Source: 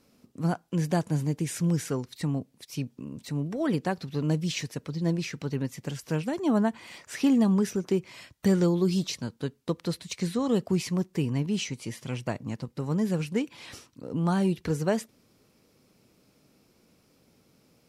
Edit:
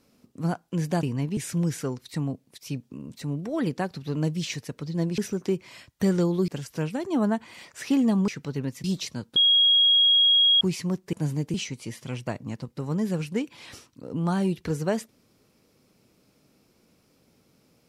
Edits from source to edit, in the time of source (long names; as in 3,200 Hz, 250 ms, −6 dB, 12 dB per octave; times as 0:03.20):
0:01.03–0:01.44: swap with 0:11.20–0:11.54
0:05.25–0:05.81: swap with 0:07.61–0:08.91
0:09.43–0:10.68: beep over 3,290 Hz −15.5 dBFS